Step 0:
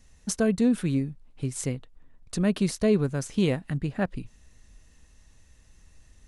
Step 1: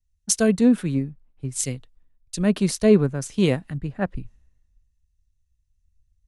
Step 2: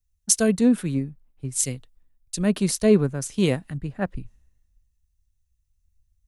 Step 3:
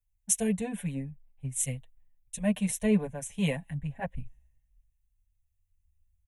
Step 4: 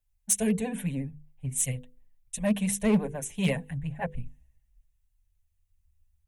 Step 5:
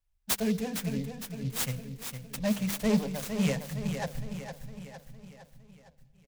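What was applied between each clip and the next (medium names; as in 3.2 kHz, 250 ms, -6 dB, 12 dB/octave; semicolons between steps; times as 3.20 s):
three bands expanded up and down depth 100%; trim +2 dB
treble shelf 8.9 kHz +10 dB; trim -1.5 dB
static phaser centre 1.3 kHz, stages 6; endless flanger 6.2 ms -0.4 Hz
vibrato 14 Hz 68 cents; overload inside the chain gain 20 dB; hum notches 50/100/150/200/250/300/350/400/450/500 Hz; trim +3 dB
feedback delay 459 ms, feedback 53%, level -8 dB; on a send at -20.5 dB: reverberation RT60 1.8 s, pre-delay 100 ms; on the sum: delay time shaken by noise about 3.9 kHz, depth 0.044 ms; trim -2.5 dB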